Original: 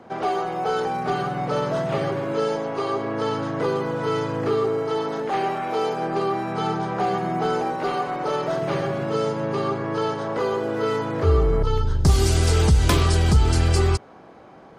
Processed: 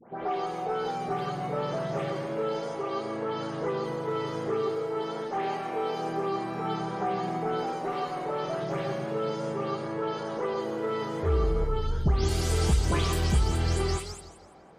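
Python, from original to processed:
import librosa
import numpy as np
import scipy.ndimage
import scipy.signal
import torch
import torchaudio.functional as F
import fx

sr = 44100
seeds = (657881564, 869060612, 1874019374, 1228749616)

y = fx.spec_delay(x, sr, highs='late', ms=236)
y = fx.echo_warbled(y, sr, ms=167, feedback_pct=36, rate_hz=2.8, cents=123, wet_db=-12.0)
y = F.gain(torch.from_numpy(y), -6.5).numpy()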